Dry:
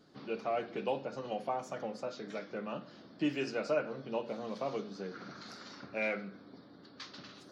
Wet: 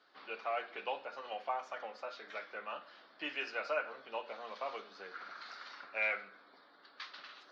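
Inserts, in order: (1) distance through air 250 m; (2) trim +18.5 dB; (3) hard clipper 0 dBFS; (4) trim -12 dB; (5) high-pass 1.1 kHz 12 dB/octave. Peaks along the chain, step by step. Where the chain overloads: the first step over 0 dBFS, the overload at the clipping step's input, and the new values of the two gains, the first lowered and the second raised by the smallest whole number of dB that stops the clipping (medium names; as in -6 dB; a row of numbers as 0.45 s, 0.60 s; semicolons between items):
-20.5 dBFS, -2.0 dBFS, -2.0 dBFS, -14.0 dBFS, -22.5 dBFS; nothing clips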